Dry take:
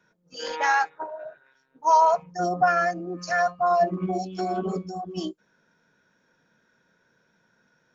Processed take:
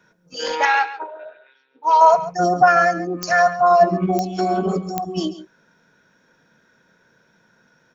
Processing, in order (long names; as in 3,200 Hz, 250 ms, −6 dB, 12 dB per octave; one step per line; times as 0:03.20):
0:00.65–0:02.01: loudspeaker in its box 410–4,100 Hz, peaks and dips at 420 Hz +3 dB, 670 Hz −9 dB, 1,100 Hz −7 dB, 1,700 Hz −4 dB, 2,500 Hz +6 dB, 3,500 Hz +6 dB
single-tap delay 138 ms −14.5 dB
digital clicks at 0:03.23/0:04.19/0:04.98, −15 dBFS
level +7.5 dB